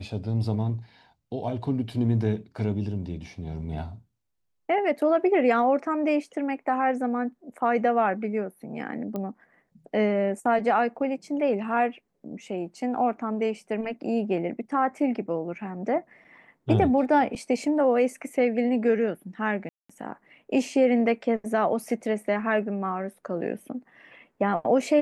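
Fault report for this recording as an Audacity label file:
9.160000	9.160000	pop -20 dBFS
19.690000	19.890000	gap 0.205 s

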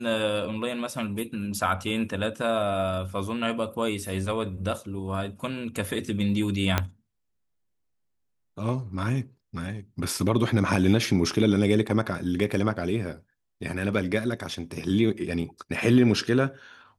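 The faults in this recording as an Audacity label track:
6.780000	6.780000	pop -7 dBFS

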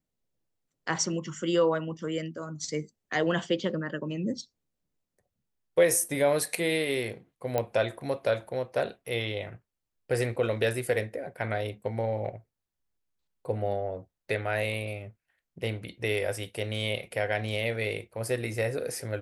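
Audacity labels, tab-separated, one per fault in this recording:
7.580000	7.580000	pop -14 dBFS

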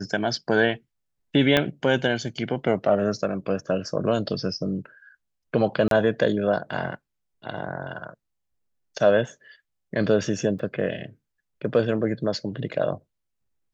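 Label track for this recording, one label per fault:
1.570000	1.570000	pop -6 dBFS
5.880000	5.910000	gap 32 ms
10.590000	10.590000	gap 4.3 ms

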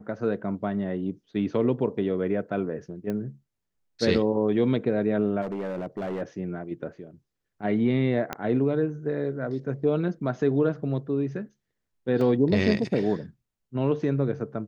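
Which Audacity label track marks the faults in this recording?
3.100000	3.100000	pop -20 dBFS
5.410000	6.220000	clipped -27 dBFS
8.330000	8.330000	pop -14 dBFS
12.210000	12.210000	gap 2.4 ms

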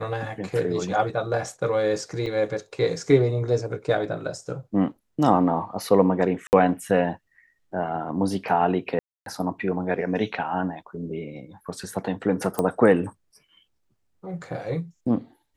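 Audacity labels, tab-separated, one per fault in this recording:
2.260000	2.260000	gap 4.8 ms
6.470000	6.530000	gap 59 ms
8.990000	9.260000	gap 0.272 s
12.590000	12.590000	pop -11 dBFS

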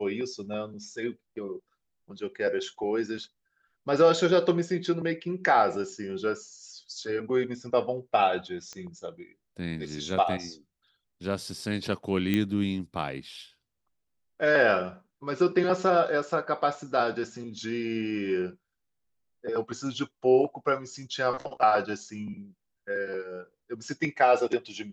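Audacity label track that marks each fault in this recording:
8.730000	8.730000	pop -26 dBFS
12.340000	12.340000	pop -14 dBFS

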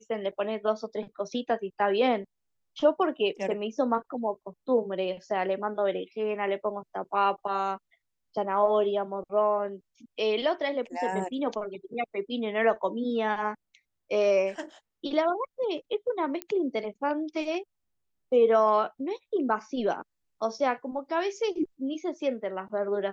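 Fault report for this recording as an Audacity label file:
16.420000	16.420000	pop -17 dBFS

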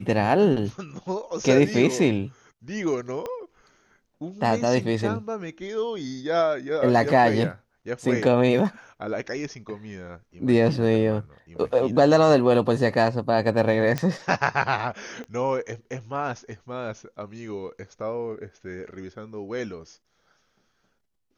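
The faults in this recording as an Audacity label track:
3.260000	3.260000	pop -19 dBFS
13.980000	13.980000	pop -12 dBFS
15.240000	15.240000	pop -26 dBFS

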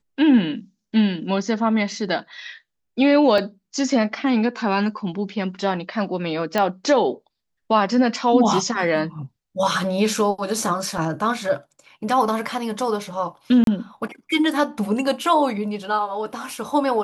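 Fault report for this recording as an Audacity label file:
3.380000	3.380000	gap 2.3 ms
6.580000	6.580000	pop -8 dBFS
10.980000	10.980000	gap 2.1 ms
13.640000	13.670000	gap 32 ms

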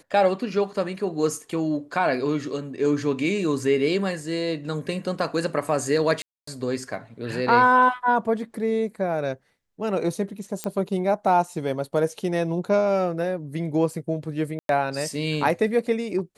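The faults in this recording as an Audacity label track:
6.220000	6.470000	gap 0.254 s
10.640000	10.640000	pop -12 dBFS
14.590000	14.690000	gap 0.102 s

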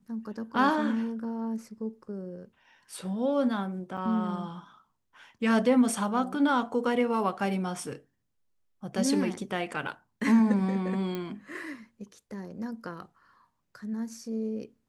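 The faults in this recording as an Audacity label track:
3.970000	3.980000	gap 5.8 ms
11.150000	11.150000	pop -21 dBFS

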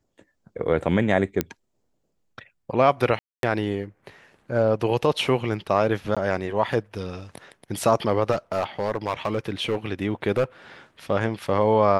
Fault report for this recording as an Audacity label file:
1.410000	1.410000	pop -8 dBFS
3.190000	3.430000	gap 0.242 s
6.150000	6.170000	gap 16 ms
8.310000	9.770000	clipped -18.5 dBFS
10.370000	10.440000	clipped -16 dBFS

